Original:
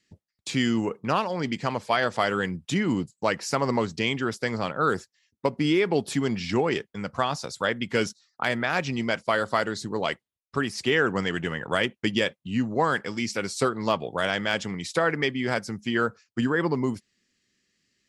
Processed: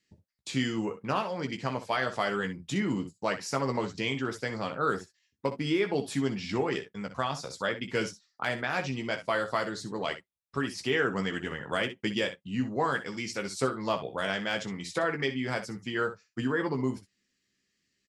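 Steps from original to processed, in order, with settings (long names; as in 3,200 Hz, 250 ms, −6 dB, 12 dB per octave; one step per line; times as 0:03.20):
ambience of single reflections 15 ms −6.5 dB, 62 ms −12 dB, 73 ms −17.5 dB
level −6 dB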